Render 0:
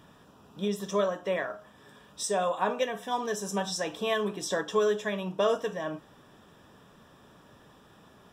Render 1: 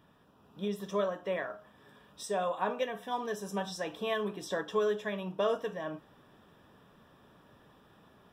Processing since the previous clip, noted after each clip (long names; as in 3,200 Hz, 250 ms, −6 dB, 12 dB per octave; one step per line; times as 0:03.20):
automatic gain control gain up to 4 dB
parametric band 7,000 Hz −8.5 dB 0.95 octaves
level −8 dB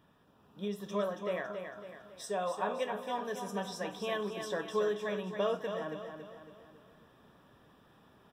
repeating echo 277 ms, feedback 46%, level −7 dB
level −2.5 dB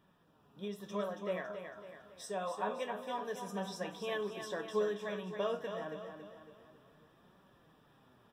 flanger 0.27 Hz, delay 5 ms, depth 7.8 ms, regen +59%
level +1 dB